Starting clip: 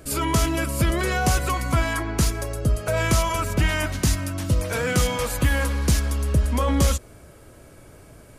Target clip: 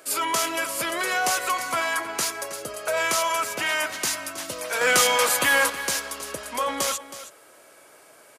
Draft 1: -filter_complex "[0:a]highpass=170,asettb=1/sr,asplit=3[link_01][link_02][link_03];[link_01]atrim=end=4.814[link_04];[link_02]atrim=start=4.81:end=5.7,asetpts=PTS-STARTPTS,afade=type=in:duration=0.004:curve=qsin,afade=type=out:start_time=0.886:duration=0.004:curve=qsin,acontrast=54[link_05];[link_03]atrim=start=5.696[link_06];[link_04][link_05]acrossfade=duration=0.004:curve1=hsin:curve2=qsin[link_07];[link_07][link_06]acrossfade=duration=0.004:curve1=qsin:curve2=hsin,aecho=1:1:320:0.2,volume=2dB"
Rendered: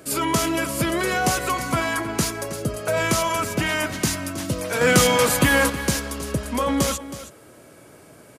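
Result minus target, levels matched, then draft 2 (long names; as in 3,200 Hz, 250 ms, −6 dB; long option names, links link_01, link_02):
125 Hz band +19.0 dB
-filter_complex "[0:a]highpass=630,asettb=1/sr,asplit=3[link_01][link_02][link_03];[link_01]atrim=end=4.814[link_04];[link_02]atrim=start=4.81:end=5.7,asetpts=PTS-STARTPTS,afade=type=in:duration=0.004:curve=qsin,afade=type=out:start_time=0.886:duration=0.004:curve=qsin,acontrast=54[link_05];[link_03]atrim=start=5.696[link_06];[link_04][link_05]acrossfade=duration=0.004:curve1=hsin:curve2=qsin[link_07];[link_07][link_06]acrossfade=duration=0.004:curve1=qsin:curve2=hsin,aecho=1:1:320:0.2,volume=2dB"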